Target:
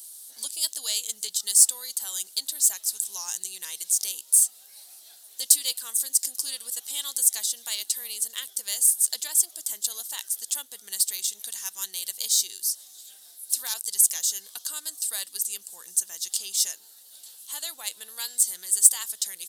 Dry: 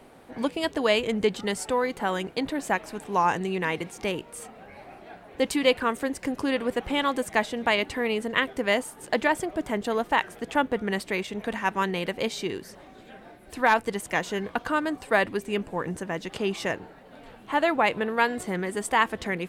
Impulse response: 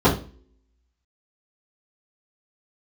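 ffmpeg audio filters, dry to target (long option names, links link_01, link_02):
-filter_complex "[0:a]aresample=32000,aresample=44100,asplit=2[link_01][link_02];[link_02]acompressor=threshold=-32dB:ratio=6,volume=-1.5dB[link_03];[link_01][link_03]amix=inputs=2:normalize=0,aexciter=amount=7.5:drive=9.4:freq=3600,aderivative,volume=-8dB"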